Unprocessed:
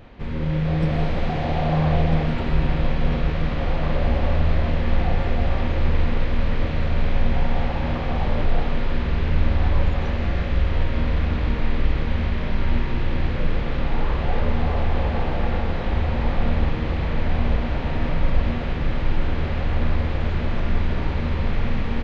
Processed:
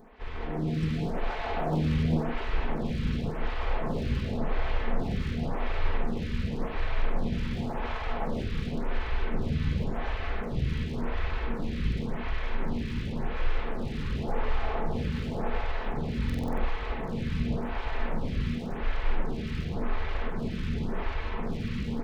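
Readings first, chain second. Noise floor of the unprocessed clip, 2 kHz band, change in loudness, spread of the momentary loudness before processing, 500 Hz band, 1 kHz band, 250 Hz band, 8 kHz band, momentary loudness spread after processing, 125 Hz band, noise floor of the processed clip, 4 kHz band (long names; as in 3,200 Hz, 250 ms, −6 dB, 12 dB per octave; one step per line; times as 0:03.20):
−25 dBFS, −6.5 dB, −8.0 dB, 4 LU, −7.0 dB, −6.5 dB, −5.5 dB, can't be measured, 5 LU, −9.5 dB, −34 dBFS, −6.5 dB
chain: lower of the sound and its delayed copy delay 4.6 ms
notch filter 610 Hz, Q 13
buffer that repeats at 0:16.25, samples 2,048, times 6
phaser with staggered stages 0.91 Hz
level −2.5 dB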